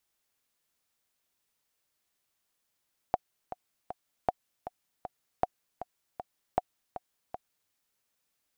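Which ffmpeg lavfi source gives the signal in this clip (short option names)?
-f lavfi -i "aevalsrc='pow(10,(-11.5-12.5*gte(mod(t,3*60/157),60/157))/20)*sin(2*PI*731*mod(t,60/157))*exp(-6.91*mod(t,60/157)/0.03)':d=4.58:s=44100"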